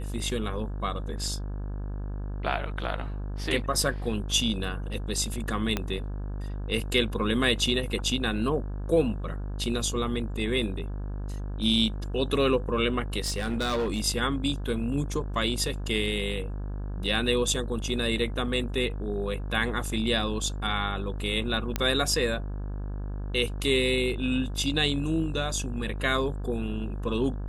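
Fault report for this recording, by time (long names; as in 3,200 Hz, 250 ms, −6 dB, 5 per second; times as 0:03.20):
mains buzz 50 Hz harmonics 34 −33 dBFS
0:05.77: click −12 dBFS
0:13.24–0:14.01: clipping −23.5 dBFS
0:21.76: click −11 dBFS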